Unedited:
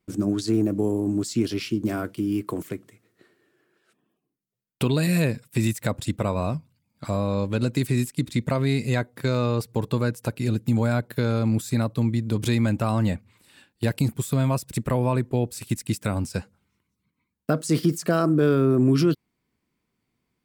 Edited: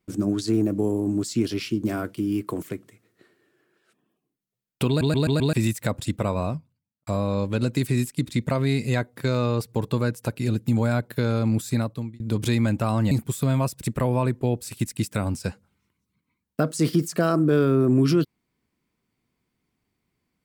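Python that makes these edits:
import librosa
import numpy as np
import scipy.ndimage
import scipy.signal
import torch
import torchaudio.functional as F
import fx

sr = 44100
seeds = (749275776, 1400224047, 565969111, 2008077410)

y = fx.studio_fade_out(x, sr, start_s=6.34, length_s=0.73)
y = fx.edit(y, sr, fx.stutter_over(start_s=4.88, slice_s=0.13, count=5),
    fx.fade_out_span(start_s=11.75, length_s=0.45),
    fx.cut(start_s=13.11, length_s=0.9), tone=tone)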